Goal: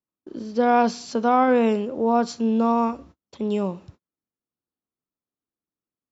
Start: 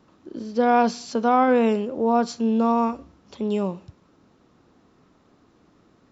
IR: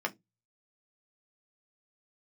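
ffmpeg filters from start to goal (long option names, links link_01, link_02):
-af "agate=range=-38dB:threshold=-45dB:ratio=16:detection=peak"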